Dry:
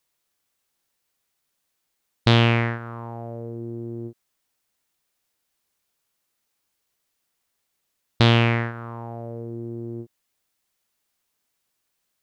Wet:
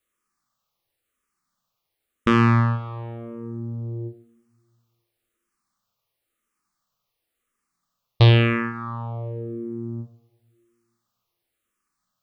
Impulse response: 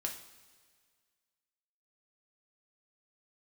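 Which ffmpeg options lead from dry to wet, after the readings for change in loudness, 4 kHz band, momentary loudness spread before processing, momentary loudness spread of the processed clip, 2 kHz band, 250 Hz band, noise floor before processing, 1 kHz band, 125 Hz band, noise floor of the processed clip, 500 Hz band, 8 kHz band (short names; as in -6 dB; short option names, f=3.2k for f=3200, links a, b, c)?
+0.5 dB, -4.0 dB, 18 LU, 18 LU, -1.5 dB, +2.0 dB, -77 dBFS, +1.0 dB, +2.5 dB, -81 dBFS, -0.5 dB, n/a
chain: -filter_complex "[0:a]equalizer=f=1.2k:t=o:w=0.21:g=13.5,asplit=2[a][b];[1:a]atrim=start_sample=2205,lowshelf=f=350:g=10,highshelf=f=4.9k:g=-10.5[c];[b][c]afir=irnorm=-1:irlink=0,volume=-2dB[d];[a][d]amix=inputs=2:normalize=0,asplit=2[e][f];[f]afreqshift=-0.95[g];[e][g]amix=inputs=2:normalize=1,volume=-4dB"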